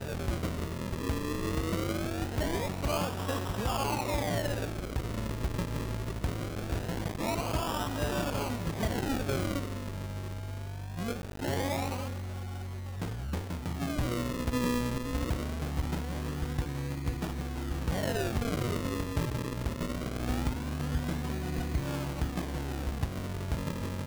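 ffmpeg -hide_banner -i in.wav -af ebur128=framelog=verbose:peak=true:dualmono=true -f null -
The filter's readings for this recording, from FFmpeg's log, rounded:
Integrated loudness:
  I:         -30.8 LUFS
  Threshold: -40.7 LUFS
Loudness range:
  LRA:         2.6 LU
  Threshold: -50.7 LUFS
  LRA low:   -32.0 LUFS
  LRA high:  -29.4 LUFS
True peak:
  Peak:      -20.5 dBFS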